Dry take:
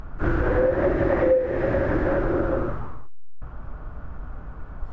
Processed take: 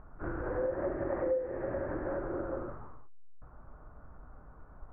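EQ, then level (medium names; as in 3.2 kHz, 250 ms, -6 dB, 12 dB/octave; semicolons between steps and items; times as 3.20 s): Bessel low-pass 1.3 kHz, order 4; distance through air 350 m; bass shelf 360 Hz -10 dB; -7.0 dB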